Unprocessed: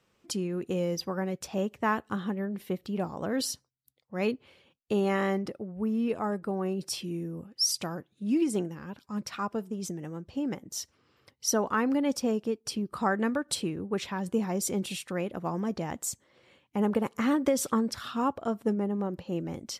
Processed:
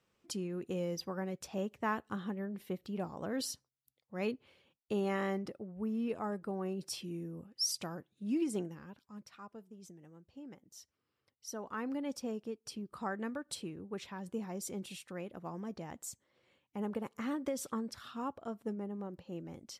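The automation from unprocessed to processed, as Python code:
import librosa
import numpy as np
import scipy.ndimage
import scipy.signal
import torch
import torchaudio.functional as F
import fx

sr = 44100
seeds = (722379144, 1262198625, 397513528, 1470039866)

y = fx.gain(x, sr, db=fx.line((8.73, -7.0), (9.29, -18.0), (11.46, -18.0), (11.86, -11.0)))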